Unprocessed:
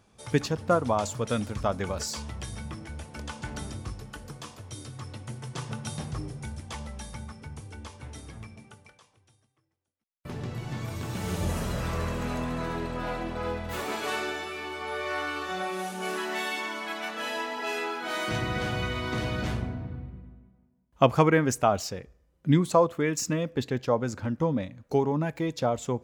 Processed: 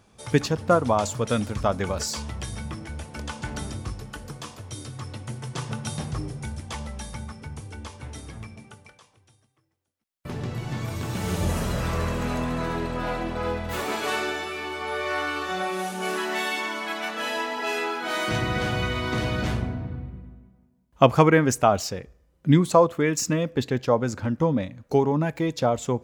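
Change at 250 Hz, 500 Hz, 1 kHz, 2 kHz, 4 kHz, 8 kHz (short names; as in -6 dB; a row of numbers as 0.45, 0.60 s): +4.0, +4.0, +4.0, +4.0, +4.0, +4.0 dB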